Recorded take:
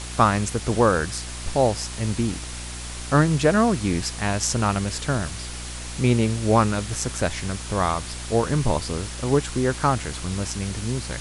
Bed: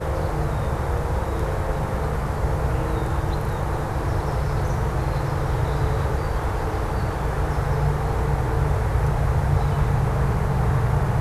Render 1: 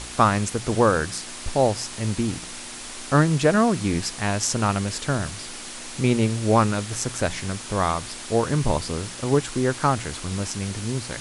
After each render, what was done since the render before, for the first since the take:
hum removal 60 Hz, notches 3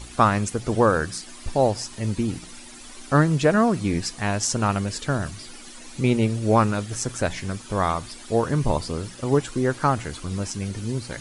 broadband denoise 11 dB, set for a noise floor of −37 dBFS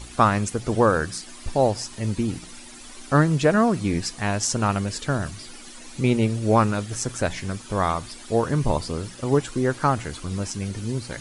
no processing that can be heard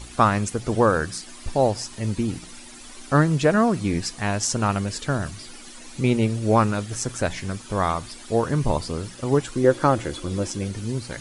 0:09.64–0:10.68: hollow resonant body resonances 340/520/3,400 Hz, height 11 dB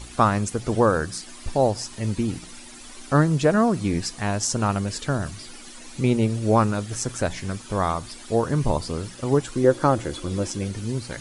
dynamic equaliser 2,300 Hz, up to −4 dB, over −35 dBFS, Q 1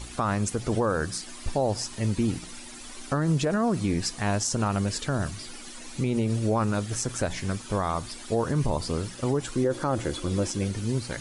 brickwall limiter −16 dBFS, peak gain reduction 11 dB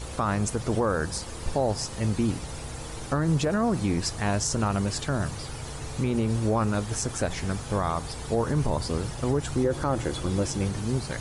mix in bed −15.5 dB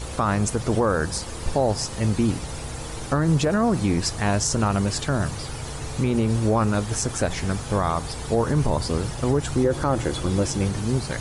level +4 dB

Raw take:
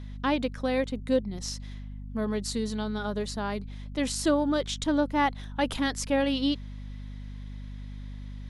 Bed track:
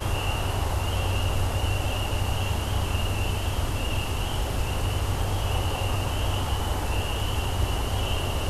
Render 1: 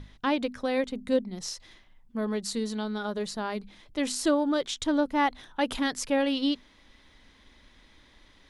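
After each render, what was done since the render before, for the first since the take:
mains-hum notches 50/100/150/200/250 Hz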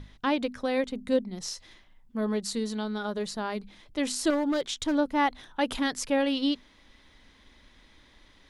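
0:01.49–0:02.40: double-tracking delay 19 ms −13 dB
0:04.30–0:04.95: hard clipping −22.5 dBFS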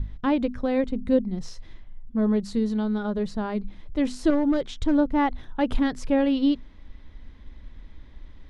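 RIAA equalisation playback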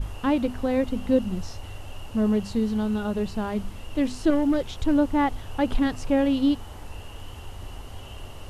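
mix in bed track −14.5 dB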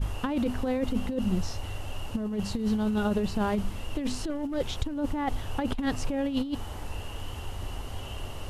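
brickwall limiter −16.5 dBFS, peak gain reduction 7 dB
compressor whose output falls as the input rises −26 dBFS, ratio −0.5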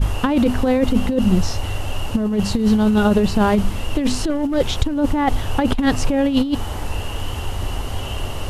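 level +11.5 dB

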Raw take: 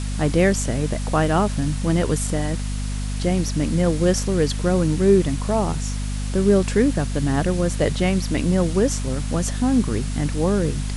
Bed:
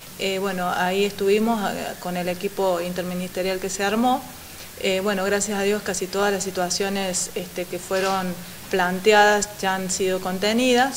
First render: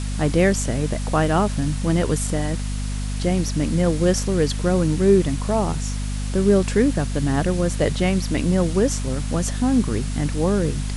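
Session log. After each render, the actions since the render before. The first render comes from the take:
no processing that can be heard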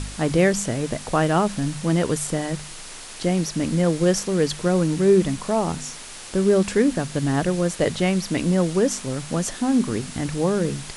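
hum removal 50 Hz, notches 5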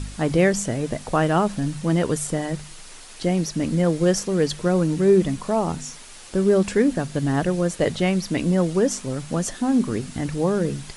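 broadband denoise 6 dB, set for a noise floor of −38 dBFS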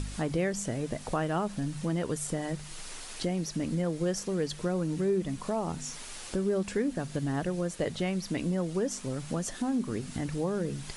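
downward compressor 2 to 1, threshold −35 dBFS, peak gain reduction 12.5 dB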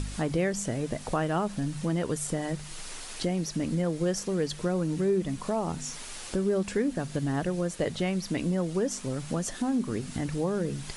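level +2 dB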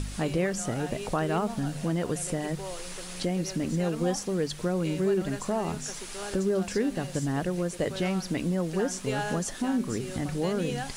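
mix in bed −17.5 dB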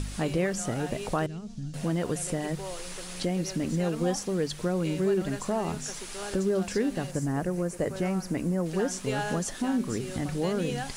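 0:01.26–0:01.74: drawn EQ curve 110 Hz 0 dB, 900 Hz −27 dB, 6,100 Hz −6 dB, 13,000 Hz −26 dB
0:07.11–0:08.66: parametric band 3,500 Hz −12 dB 0.93 octaves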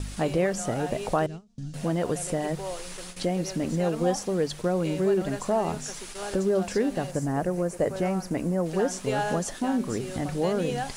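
noise gate with hold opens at −28 dBFS
dynamic equaliser 670 Hz, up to +6 dB, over −42 dBFS, Q 1.1

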